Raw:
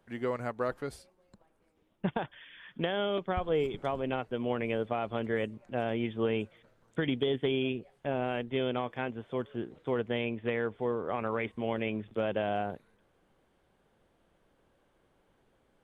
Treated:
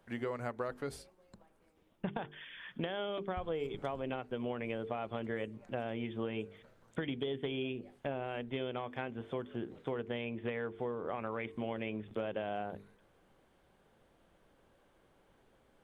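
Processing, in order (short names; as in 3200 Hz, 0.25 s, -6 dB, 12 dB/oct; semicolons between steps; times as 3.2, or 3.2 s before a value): notches 50/100/150/200/250/300/350/400/450 Hz; compressor 4:1, threshold -37 dBFS, peak gain reduction 10.5 dB; on a send: reverb RT60 0.50 s, pre-delay 3 ms, DRR 23.5 dB; on the sum: gain +2 dB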